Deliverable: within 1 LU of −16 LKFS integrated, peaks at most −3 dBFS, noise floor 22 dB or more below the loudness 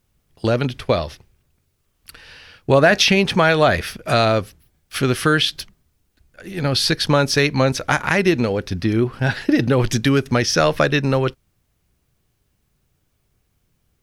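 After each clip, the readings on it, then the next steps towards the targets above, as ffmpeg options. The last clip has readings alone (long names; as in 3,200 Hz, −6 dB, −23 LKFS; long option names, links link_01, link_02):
integrated loudness −18.0 LKFS; sample peak −1.5 dBFS; target loudness −16.0 LKFS
→ -af "volume=2dB,alimiter=limit=-3dB:level=0:latency=1"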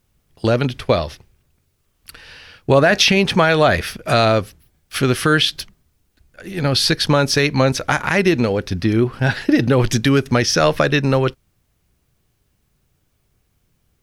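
integrated loudness −16.5 LKFS; sample peak −3.0 dBFS; background noise floor −66 dBFS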